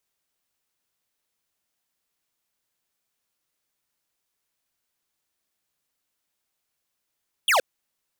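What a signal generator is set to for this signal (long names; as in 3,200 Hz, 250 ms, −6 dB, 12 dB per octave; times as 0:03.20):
single falling chirp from 3,500 Hz, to 470 Hz, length 0.12 s square, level −19 dB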